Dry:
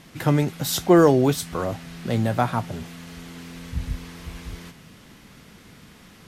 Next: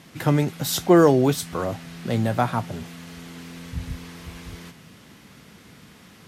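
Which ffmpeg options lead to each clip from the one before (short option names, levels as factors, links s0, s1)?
-af "highpass=69"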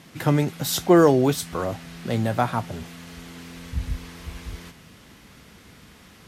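-af "asubboost=boost=4:cutoff=66"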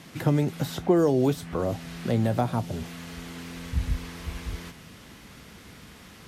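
-filter_complex "[0:a]acrossover=split=720|2700[s0][s1][s2];[s0]acompressor=threshold=0.1:ratio=4[s3];[s1]acompressor=threshold=0.00794:ratio=4[s4];[s2]acompressor=threshold=0.00447:ratio=4[s5];[s3][s4][s5]amix=inputs=3:normalize=0,volume=1.19"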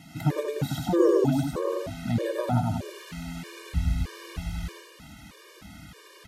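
-af "aecho=1:1:99.13|180.8:0.794|0.501,afftfilt=real='re*gt(sin(2*PI*1.6*pts/sr)*(1-2*mod(floor(b*sr/1024/310),2)),0)':imag='im*gt(sin(2*PI*1.6*pts/sr)*(1-2*mod(floor(b*sr/1024/310),2)),0)':win_size=1024:overlap=0.75"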